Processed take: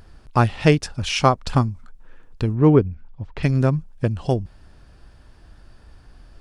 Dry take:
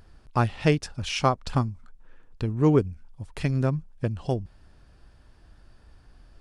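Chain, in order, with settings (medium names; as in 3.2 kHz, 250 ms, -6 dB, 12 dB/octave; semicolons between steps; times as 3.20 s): 2.55–3.43 s: distance through air 220 m; trim +6 dB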